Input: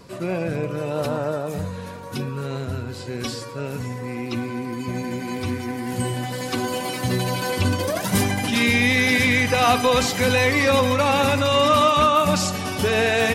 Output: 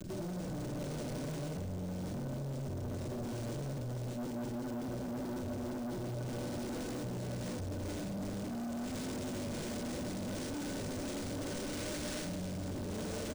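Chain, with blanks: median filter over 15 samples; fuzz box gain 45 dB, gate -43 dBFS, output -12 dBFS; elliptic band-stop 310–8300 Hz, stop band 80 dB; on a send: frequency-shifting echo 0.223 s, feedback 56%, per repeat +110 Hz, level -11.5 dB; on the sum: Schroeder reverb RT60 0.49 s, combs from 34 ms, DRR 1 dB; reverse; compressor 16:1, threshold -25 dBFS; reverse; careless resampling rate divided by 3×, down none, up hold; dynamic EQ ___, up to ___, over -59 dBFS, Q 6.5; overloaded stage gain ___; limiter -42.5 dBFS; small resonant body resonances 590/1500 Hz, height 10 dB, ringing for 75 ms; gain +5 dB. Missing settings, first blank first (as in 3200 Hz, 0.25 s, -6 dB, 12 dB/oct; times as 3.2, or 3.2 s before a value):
2000 Hz, +3 dB, 32 dB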